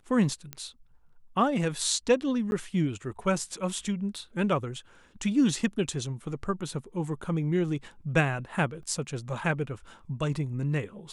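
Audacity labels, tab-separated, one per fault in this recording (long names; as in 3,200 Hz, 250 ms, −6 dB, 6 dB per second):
0.530000	0.530000	click −18 dBFS
2.510000	2.520000	drop-out 11 ms
4.160000	4.160000	drop-out 3 ms
8.830000	8.830000	drop-out 2.1 ms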